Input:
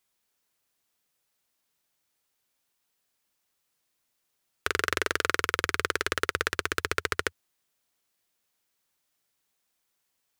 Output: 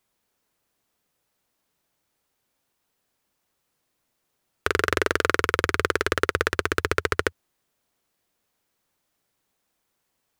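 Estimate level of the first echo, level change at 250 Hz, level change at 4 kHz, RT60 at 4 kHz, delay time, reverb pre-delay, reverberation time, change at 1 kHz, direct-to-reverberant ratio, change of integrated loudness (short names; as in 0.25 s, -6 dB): none, +8.5 dB, +1.0 dB, none, none, none, none, +5.0 dB, none, +4.5 dB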